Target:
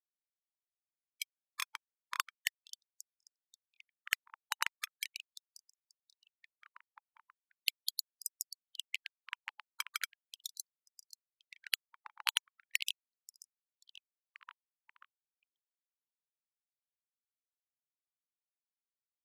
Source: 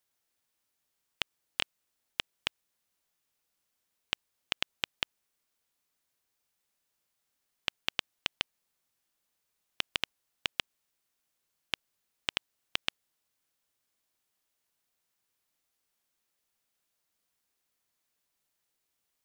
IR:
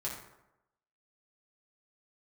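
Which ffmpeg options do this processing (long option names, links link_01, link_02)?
-filter_complex "[0:a]equalizer=frequency=8600:width=0.7:gain=-11.5,afftfilt=real='re*gte(hypot(re,im),0.02)':imag='im*gte(hypot(re,im),0.02)':win_size=1024:overlap=0.75,highpass=frequency=450:width_type=q:width=4.9,acrusher=samples=11:mix=1:aa=0.000001:lfo=1:lforange=11:lforate=0.23,asplit=2[link_01][link_02];[link_02]adelay=535,lowpass=frequency=2300:poles=1,volume=-12.5dB,asplit=2[link_03][link_04];[link_04]adelay=535,lowpass=frequency=2300:poles=1,volume=0.52,asplit=2[link_05][link_06];[link_06]adelay=535,lowpass=frequency=2300:poles=1,volume=0.52,asplit=2[link_07][link_08];[link_08]adelay=535,lowpass=frequency=2300:poles=1,volume=0.52,asplit=2[link_09][link_10];[link_10]adelay=535,lowpass=frequency=2300:poles=1,volume=0.52[link_11];[link_01][link_03][link_05][link_07][link_09][link_11]amix=inputs=6:normalize=0,asoftclip=type=tanh:threshold=-24.5dB,aresample=32000,aresample=44100,alimiter=level_in=3.5dB:limit=-24dB:level=0:latency=1:release=106,volume=-3.5dB,afftfilt=real='re*gte(b*sr/1024,830*pow(5000/830,0.5+0.5*sin(2*PI*0.39*pts/sr)))':imag='im*gte(b*sr/1024,830*pow(5000/830,0.5+0.5*sin(2*PI*0.39*pts/sr)))':win_size=1024:overlap=0.75,volume=16.5dB"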